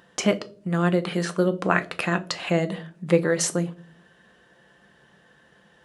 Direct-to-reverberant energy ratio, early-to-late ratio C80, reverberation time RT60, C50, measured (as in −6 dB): 8.5 dB, 23.5 dB, 0.45 s, 18.0 dB